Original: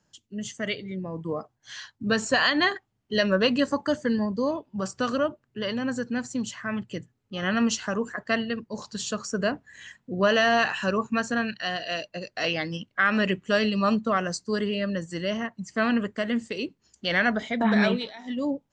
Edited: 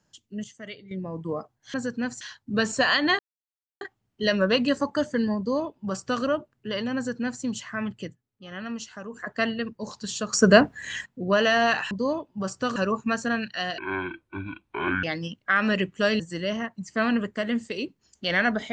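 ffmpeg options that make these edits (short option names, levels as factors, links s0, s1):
-filter_complex "[0:a]asplit=15[s0][s1][s2][s3][s4][s5][s6][s7][s8][s9][s10][s11][s12][s13][s14];[s0]atrim=end=0.442[s15];[s1]atrim=start=0.438:end=0.912,asetpts=PTS-STARTPTS,volume=0.316[s16];[s2]atrim=start=0.908:end=1.742[s17];[s3]atrim=start=5.868:end=6.342[s18];[s4]atrim=start=1.738:end=2.72,asetpts=PTS-STARTPTS,afade=t=out:st=0.978:d=0.004:c=hsin,apad=pad_dur=0.62[s19];[s5]atrim=start=2.72:end=7.08,asetpts=PTS-STARTPTS,afade=t=in:d=0.004:c=hsin,afade=t=out:st=4.2:d=0.16:silence=0.298538[s20];[s6]atrim=start=7.08:end=8.02,asetpts=PTS-STARTPTS,volume=0.299[s21];[s7]atrim=start=8.02:end=9.242,asetpts=PTS-STARTPTS,afade=t=in:d=0.16:silence=0.298538[s22];[s8]atrim=start=9.238:end=9.972,asetpts=PTS-STARTPTS,volume=3.55[s23];[s9]atrim=start=9.968:end=10.822[s24];[s10]atrim=start=4.288:end=5.142[s25];[s11]atrim=start=10.818:end=11.844[s26];[s12]atrim=start=11.84:end=12.53,asetpts=PTS-STARTPTS,asetrate=24255,aresample=44100,atrim=end_sample=55325,asetpts=PTS-STARTPTS[s27];[s13]atrim=start=12.526:end=13.692[s28];[s14]atrim=start=14.998[s29];[s15][s16]acrossfade=d=0.004:c1=hsin:c2=hsin[s30];[s30][s17]acrossfade=d=0.004:c1=hsin:c2=hsin[s31];[s31][s18]acrossfade=d=0.004:c1=hsin:c2=hsin[s32];[s19][s20][s21][s22]concat=n=4:v=0:a=1[s33];[s32][s33]acrossfade=d=0.004:c1=hsin:c2=hsin[s34];[s34][s23]acrossfade=d=0.004:c1=hsin:c2=hsin[s35];[s35][s24]acrossfade=d=0.004:c1=hsin:c2=hsin[s36];[s36][s25]acrossfade=d=0.004:c1=hsin:c2=hsin[s37];[s37][s26]acrossfade=d=0.004:c1=hsin:c2=hsin[s38];[s38][s27]acrossfade=d=0.004:c1=hsin:c2=hsin[s39];[s39][s28]acrossfade=d=0.004:c1=hsin:c2=hsin[s40];[s40][s29]acrossfade=d=0.004:c1=hsin:c2=hsin"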